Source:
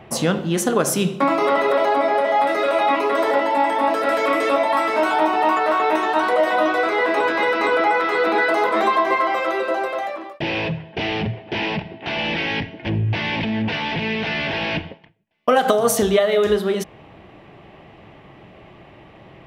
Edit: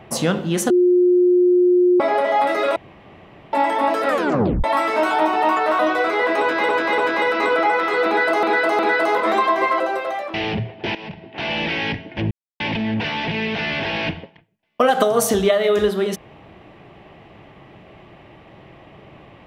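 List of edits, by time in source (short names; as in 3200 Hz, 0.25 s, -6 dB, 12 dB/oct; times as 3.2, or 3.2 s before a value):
0.7–2 bleep 358 Hz -11 dBFS
2.76–3.53 room tone
4.08 tape stop 0.56 s
5.79–6.58 cut
7.19–7.48 loop, 3 plays
8.28–8.64 loop, 3 plays
9.29–9.68 cut
10.22–11.02 cut
11.63–12.15 fade in, from -15.5 dB
12.99–13.28 mute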